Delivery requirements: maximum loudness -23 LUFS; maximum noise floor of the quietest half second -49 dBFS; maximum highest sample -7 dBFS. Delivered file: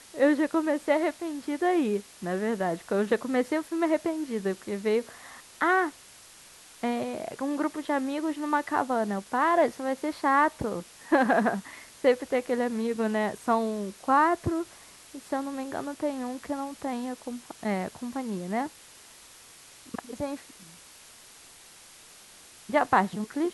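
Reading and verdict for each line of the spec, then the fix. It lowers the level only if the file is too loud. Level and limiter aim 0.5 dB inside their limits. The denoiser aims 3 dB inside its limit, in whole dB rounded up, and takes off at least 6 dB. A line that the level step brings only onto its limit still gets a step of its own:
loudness -28.0 LUFS: pass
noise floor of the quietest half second -52 dBFS: pass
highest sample -9.0 dBFS: pass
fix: none needed

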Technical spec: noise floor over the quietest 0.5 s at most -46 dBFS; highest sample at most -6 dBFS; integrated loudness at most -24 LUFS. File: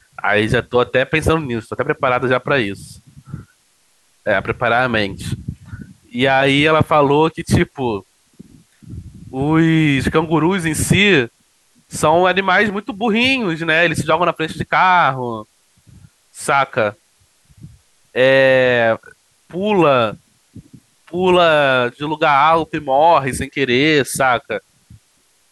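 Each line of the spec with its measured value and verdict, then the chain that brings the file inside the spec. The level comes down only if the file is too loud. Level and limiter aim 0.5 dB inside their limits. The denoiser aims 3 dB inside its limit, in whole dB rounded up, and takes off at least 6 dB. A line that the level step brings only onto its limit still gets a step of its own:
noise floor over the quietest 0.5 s -58 dBFS: pass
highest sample -2.5 dBFS: fail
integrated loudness -15.5 LUFS: fail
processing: trim -9 dB

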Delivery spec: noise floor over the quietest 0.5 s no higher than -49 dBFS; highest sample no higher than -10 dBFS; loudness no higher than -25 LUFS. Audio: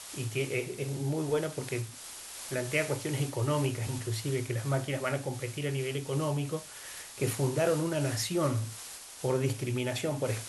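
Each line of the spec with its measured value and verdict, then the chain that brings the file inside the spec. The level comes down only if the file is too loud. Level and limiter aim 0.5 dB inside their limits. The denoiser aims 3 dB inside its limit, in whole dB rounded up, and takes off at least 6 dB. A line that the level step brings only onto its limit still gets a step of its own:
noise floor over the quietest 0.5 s -45 dBFS: fail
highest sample -15.0 dBFS: pass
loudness -32.5 LUFS: pass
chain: noise reduction 7 dB, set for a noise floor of -45 dBFS

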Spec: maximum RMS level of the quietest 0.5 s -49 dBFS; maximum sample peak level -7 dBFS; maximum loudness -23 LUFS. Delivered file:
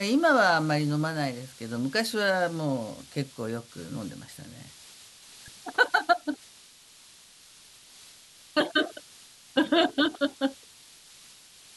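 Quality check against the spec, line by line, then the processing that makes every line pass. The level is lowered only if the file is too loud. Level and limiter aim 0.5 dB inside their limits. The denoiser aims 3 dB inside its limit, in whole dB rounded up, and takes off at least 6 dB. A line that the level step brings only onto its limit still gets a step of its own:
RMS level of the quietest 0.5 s -54 dBFS: pass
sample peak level -8.5 dBFS: pass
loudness -27.0 LUFS: pass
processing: none needed

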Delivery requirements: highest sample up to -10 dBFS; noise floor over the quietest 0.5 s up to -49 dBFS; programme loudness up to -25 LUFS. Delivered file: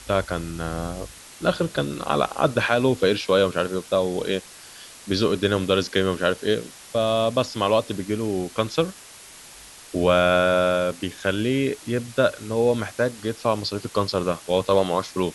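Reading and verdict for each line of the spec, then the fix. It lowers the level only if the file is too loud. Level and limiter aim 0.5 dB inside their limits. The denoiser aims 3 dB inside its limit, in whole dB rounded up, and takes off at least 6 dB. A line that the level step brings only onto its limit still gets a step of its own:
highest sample -5.0 dBFS: fail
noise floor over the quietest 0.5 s -45 dBFS: fail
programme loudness -23.0 LUFS: fail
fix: noise reduction 6 dB, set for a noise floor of -45 dBFS; trim -2.5 dB; peak limiter -10.5 dBFS

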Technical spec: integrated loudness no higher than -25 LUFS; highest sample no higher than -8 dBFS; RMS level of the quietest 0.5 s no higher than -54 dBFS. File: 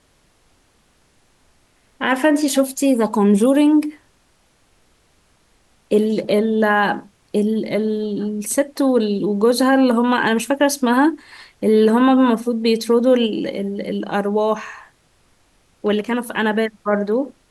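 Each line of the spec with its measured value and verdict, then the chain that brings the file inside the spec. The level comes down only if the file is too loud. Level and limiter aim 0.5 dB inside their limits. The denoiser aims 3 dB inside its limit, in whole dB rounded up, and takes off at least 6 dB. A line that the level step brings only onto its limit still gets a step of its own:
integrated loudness -18.0 LUFS: fail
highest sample -5.5 dBFS: fail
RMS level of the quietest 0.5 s -59 dBFS: pass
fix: trim -7.5 dB

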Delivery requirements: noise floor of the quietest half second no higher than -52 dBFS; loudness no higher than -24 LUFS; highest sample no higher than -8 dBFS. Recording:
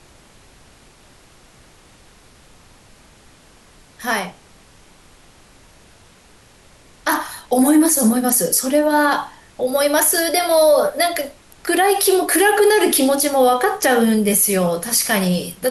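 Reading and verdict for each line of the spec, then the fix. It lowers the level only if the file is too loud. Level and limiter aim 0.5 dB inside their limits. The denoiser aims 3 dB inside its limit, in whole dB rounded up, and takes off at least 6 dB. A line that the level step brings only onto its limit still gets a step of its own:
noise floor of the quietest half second -49 dBFS: fail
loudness -16.0 LUFS: fail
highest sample -5.5 dBFS: fail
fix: trim -8.5 dB

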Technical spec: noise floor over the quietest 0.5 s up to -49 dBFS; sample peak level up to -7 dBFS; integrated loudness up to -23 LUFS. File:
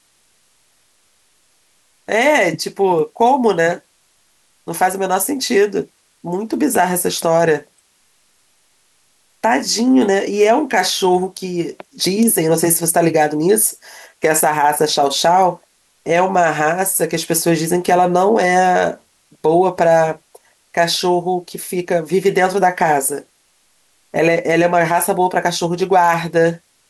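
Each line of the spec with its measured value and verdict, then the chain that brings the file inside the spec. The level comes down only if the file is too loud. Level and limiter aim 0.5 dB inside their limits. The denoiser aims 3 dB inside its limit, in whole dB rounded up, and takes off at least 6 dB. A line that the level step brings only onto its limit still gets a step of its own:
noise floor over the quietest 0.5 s -58 dBFS: pass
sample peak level -3.5 dBFS: fail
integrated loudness -15.5 LUFS: fail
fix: trim -8 dB

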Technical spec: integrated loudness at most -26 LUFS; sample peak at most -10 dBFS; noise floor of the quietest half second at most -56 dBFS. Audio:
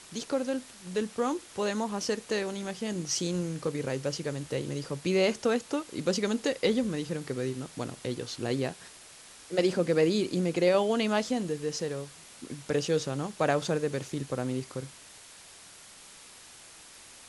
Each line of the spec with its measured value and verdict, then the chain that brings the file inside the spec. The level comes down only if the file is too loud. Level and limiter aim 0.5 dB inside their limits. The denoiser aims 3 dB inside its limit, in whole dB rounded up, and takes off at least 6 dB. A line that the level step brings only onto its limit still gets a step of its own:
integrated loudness -30.5 LUFS: pass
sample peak -12.5 dBFS: pass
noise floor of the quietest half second -51 dBFS: fail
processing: noise reduction 8 dB, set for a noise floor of -51 dBFS

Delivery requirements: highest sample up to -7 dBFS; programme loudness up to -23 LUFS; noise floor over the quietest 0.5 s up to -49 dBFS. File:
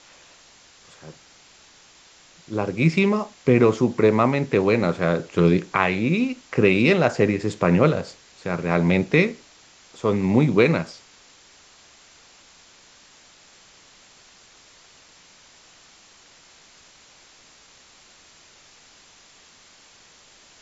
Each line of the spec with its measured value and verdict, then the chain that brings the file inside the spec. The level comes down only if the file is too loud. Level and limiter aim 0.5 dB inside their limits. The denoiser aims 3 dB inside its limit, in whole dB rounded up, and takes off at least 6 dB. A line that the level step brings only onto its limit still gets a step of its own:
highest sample -2.0 dBFS: fail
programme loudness -20.5 LUFS: fail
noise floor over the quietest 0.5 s -52 dBFS: pass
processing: trim -3 dB; peak limiter -7.5 dBFS

